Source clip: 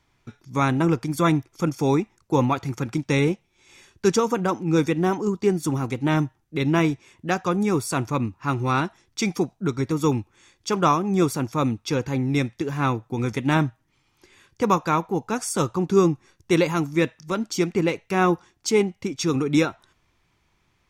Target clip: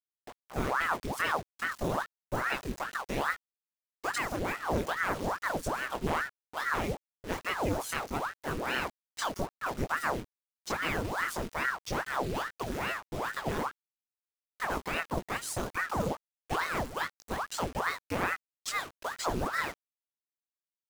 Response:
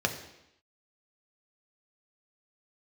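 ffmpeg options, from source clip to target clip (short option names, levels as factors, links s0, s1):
-filter_complex "[0:a]asettb=1/sr,asplit=3[s0][s1][s2];[s0]atrim=end=18.334[s3];[s1]atrim=start=18.33:end=19,asetpts=PTS-STARTPTS,afade=t=in:d=0.004:c=qsin,afade=t=out:st=0.666:d=0.004:c=qsin,highpass=f=1000:p=1[s4];[s2]atrim=start=18.996[s5];[s3][s4]acrossfade=d=0.004:c1=hsin:c2=qsin[s6];[s6][s5]acrossfade=d=0.004:c1=qsin:c2=hsin,alimiter=limit=0.188:level=0:latency=1:release=71,acrusher=bits=5:mix=0:aa=0.000001,flanger=delay=18:depth=5.6:speed=2.1,aeval=exprs='(tanh(8.91*val(0)+0.55)-tanh(0.55))/8.91':c=same,aeval=exprs='val(0)*sin(2*PI*880*n/s+880*0.9/2.4*sin(2*PI*2.4*n/s))':c=same"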